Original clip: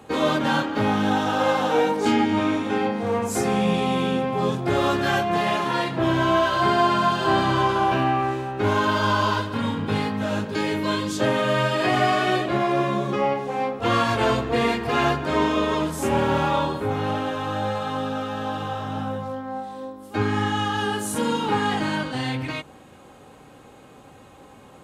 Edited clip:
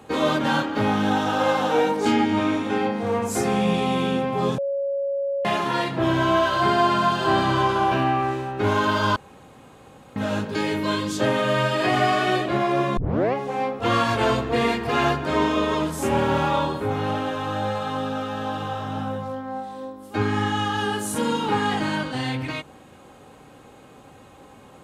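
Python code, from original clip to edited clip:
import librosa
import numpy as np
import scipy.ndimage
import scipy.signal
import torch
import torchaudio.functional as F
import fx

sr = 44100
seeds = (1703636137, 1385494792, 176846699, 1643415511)

y = fx.edit(x, sr, fx.bleep(start_s=4.58, length_s=0.87, hz=556.0, db=-22.0),
    fx.room_tone_fill(start_s=9.16, length_s=1.0),
    fx.tape_start(start_s=12.97, length_s=0.37), tone=tone)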